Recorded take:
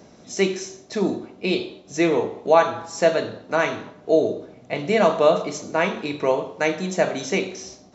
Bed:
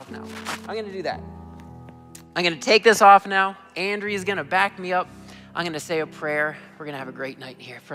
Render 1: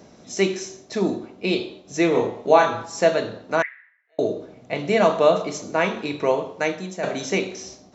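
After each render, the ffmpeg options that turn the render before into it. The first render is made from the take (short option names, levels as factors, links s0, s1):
-filter_complex "[0:a]asettb=1/sr,asplit=3[s0][s1][s2];[s0]atrim=end=2.124[s3];[s1]atrim=start=2.12:end=2.84,asetpts=PTS-STARTPTS,afade=t=in:d=0.004:c=qsin,afade=t=out:st=0.716:d=0.004:c=qsin,asplit=2[s4][s5];[s5]adelay=28,volume=0.708[s6];[s4][s6]amix=inputs=2:normalize=0,atrim=end_sample=31752[s7];[s2]atrim=start=2.836[s8];[s3][s7]acrossfade=d=0.004:c1=hsin:c2=qsin[s9];[s9][s8]acrossfade=d=0.004:c1=qsin:c2=hsin,asettb=1/sr,asplit=3[s10][s11][s12];[s10]atrim=end=3.624[s13];[s11]atrim=start=3.62:end=4.19,asetpts=PTS-STARTPTS,afade=t=in:d=0.004:c=qsin,afade=t=out:st=0.566:d=0.004:c=qsin,asuperpass=centerf=1900:order=4:qfactor=4.7[s14];[s12]atrim=start=4.186[s15];[s13][s14]acrossfade=d=0.004:c1=hsin:c2=qsin[s16];[s16][s15]acrossfade=d=0.004:c1=qsin:c2=hsin,asplit=2[s17][s18];[s17]atrim=end=7.03,asetpts=PTS-STARTPTS,afade=t=out:st=6.52:d=0.51:silence=0.298538[s19];[s18]atrim=start=7.03,asetpts=PTS-STARTPTS,afade=t=in:d=0.004:c=hsin:silence=0.298538[s20];[s19][s20]concat=n=2:v=0:a=1"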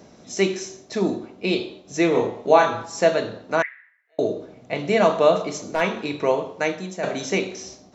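-filter_complex "[0:a]asplit=3[s0][s1][s2];[s0]afade=t=out:st=5.33:d=0.02[s3];[s1]aeval=exprs='clip(val(0),-1,0.158)':c=same,afade=t=in:st=5.33:d=0.02,afade=t=out:st=5.8:d=0.02[s4];[s2]afade=t=in:st=5.8:d=0.02[s5];[s3][s4][s5]amix=inputs=3:normalize=0"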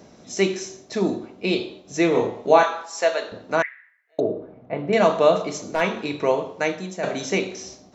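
-filter_complex "[0:a]asettb=1/sr,asplit=3[s0][s1][s2];[s0]atrim=end=2.634[s3];[s1]atrim=start=2.63:end=3.32,asetpts=PTS-STARTPTS,afade=t=in:d=0.004:c=qsin,afade=t=out:st=0.686:d=0.004:c=qsin,highpass=590[s4];[s2]atrim=start=3.316[s5];[s3][s4]acrossfade=d=0.004:c1=hsin:c2=qsin[s6];[s6][s5]acrossfade=d=0.004:c1=qsin:c2=hsin,asettb=1/sr,asplit=3[s7][s8][s9];[s7]atrim=end=4.204[s10];[s8]atrim=start=4.2:end=4.93,asetpts=PTS-STARTPTS,afade=t=in:d=0.004:c=qsin,afade=t=out:st=0.726:d=0.004:c=qsin,lowpass=1400[s11];[s9]atrim=start=4.926[s12];[s10][s11]acrossfade=d=0.004:c1=hsin:c2=qsin[s13];[s13][s12]acrossfade=d=0.004:c1=qsin:c2=hsin"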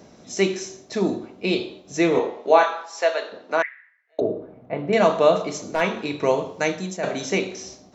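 -filter_complex "[0:a]asettb=1/sr,asplit=3[s0][s1][s2];[s0]atrim=end=2.194[s3];[s1]atrim=start=2.19:end=4.22,asetpts=PTS-STARTPTS,afade=t=in:d=0.004:c=qsin,afade=t=out:st=2.026:d=0.004:c=qsin,highpass=330,lowpass=5600[s4];[s2]atrim=start=4.216[s5];[s3][s4]acrossfade=d=0.004:c1=hsin:c2=qsin[s6];[s6][s5]acrossfade=d=0.004:c1=qsin:c2=hsin,asettb=1/sr,asplit=3[s7][s8][s9];[s7]atrim=end=6.234[s10];[s8]atrim=start=6.23:end=6.97,asetpts=PTS-STARTPTS,afade=t=in:d=0.004:c=qsin,afade=t=out:st=0.736:d=0.004:c=qsin,bass=f=250:g=4,treble=f=4000:g=6[s11];[s9]atrim=start=6.966[s12];[s10][s11]acrossfade=d=0.004:c1=hsin:c2=qsin[s13];[s13][s12]acrossfade=d=0.004:c1=qsin:c2=hsin"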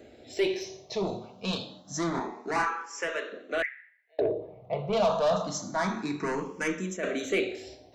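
-filter_complex "[0:a]asoftclip=type=tanh:threshold=0.119,asplit=2[s0][s1];[s1]afreqshift=0.27[s2];[s0][s2]amix=inputs=2:normalize=1"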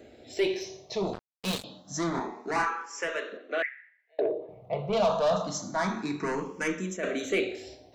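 -filter_complex "[0:a]asettb=1/sr,asplit=3[s0][s1][s2];[s0]atrim=end=1.134[s3];[s1]atrim=start=1.13:end=1.64,asetpts=PTS-STARTPTS,afade=t=in:d=0.004:c=qsin,afade=t=out:st=0.506:d=0.004:c=qsin,acrusher=bits=4:mix=0:aa=0.5[s4];[s2]atrim=start=1.636[s5];[s3][s4]acrossfade=d=0.004:c1=hsin:c2=qsin[s6];[s6][s5]acrossfade=d=0.004:c1=qsin:c2=hsin,asettb=1/sr,asplit=3[s7][s8][s9];[s7]atrim=end=3.374[s10];[s8]atrim=start=3.37:end=4.49,asetpts=PTS-STARTPTS,afade=t=in:d=0.004:c=qsin,afade=t=out:st=1.116:d=0.004:c=qsin,highpass=280,lowpass=4100[s11];[s9]atrim=start=4.486[s12];[s10][s11]acrossfade=d=0.004:c1=hsin:c2=qsin[s13];[s13][s12]acrossfade=d=0.004:c1=qsin:c2=hsin"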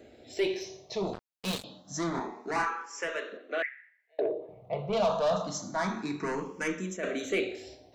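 -af "volume=0.794"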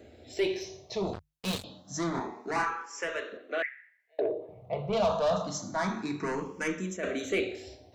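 -af "equalizer=f=84:w=1.9:g=11.5,bandreject=f=50:t=h:w=6,bandreject=f=100:t=h:w=6,bandreject=f=150:t=h:w=6"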